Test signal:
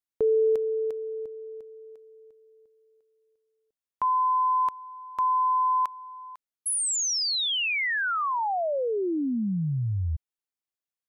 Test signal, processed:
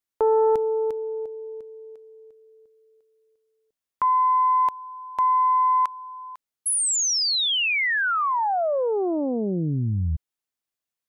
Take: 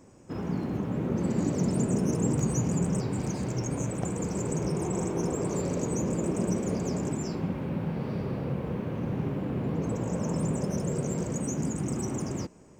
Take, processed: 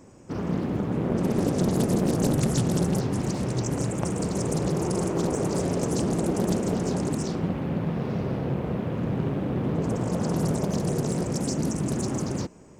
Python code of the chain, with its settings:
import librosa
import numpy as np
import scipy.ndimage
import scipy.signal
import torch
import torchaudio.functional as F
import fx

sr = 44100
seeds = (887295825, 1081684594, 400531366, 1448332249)

y = fx.doppler_dist(x, sr, depth_ms=0.94)
y = F.gain(torch.from_numpy(y), 4.0).numpy()